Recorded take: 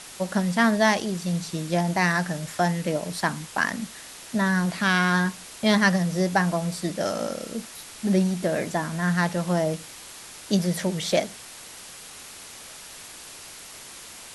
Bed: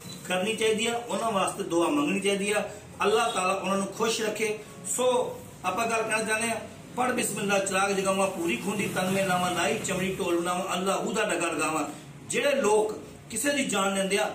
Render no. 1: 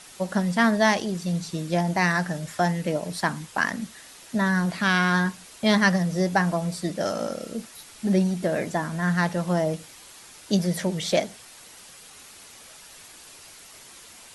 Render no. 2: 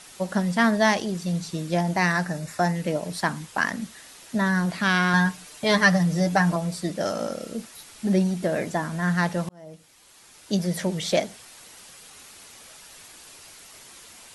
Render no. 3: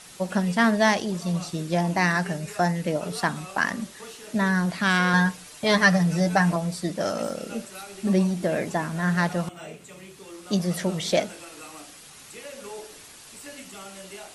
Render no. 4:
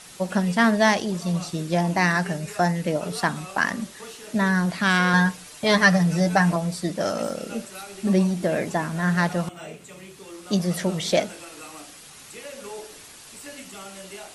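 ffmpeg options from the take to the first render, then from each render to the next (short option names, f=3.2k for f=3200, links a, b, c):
-af "afftdn=nr=6:nf=-43"
-filter_complex "[0:a]asettb=1/sr,asplit=3[a][b][c];[a]atrim=end=2.244[d];[b]atrim=start=2.24:end=2.76,asetpts=PTS-STARTPTS,afade=t=in:d=0.004:c=qsin,afade=t=out:st=0.516:d=0.004:c=qsin,bandreject=f=3.2k:w=5.1[e];[c]atrim=start=2.756[f];[d][e]acrossfade=d=0.004:c1=hsin:c2=qsin[g];[g][f]acrossfade=d=0.004:c1=qsin:c2=hsin,asettb=1/sr,asplit=3[h][i][j];[h]atrim=end=5.134[k];[i]atrim=start=5.13:end=6.56,asetpts=PTS-STARTPTS,afade=t=in:d=0.004:c=qsin,afade=t=out:st=1.426:d=0.004:c=qsin,aecho=1:1:6.7:0.68,atrim=end_sample=63063[l];[j]atrim=start=6.556[m];[k][l]acrossfade=d=0.004:c1=hsin:c2=qsin[n];[n][m]acrossfade=d=0.004:c1=qsin:c2=hsin,asplit=2[o][p];[o]atrim=end=9.49,asetpts=PTS-STARTPTS,afade=t=out:st=9.486:d=0.004:c=hsin[q];[p]atrim=start=9.49,asetpts=PTS-STARTPTS,afade=t=in:d=1.35[r];[q][r]concat=n=2:v=0:a=1"
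-filter_complex "[1:a]volume=-16.5dB[a];[0:a][a]amix=inputs=2:normalize=0"
-af "volume=1.5dB"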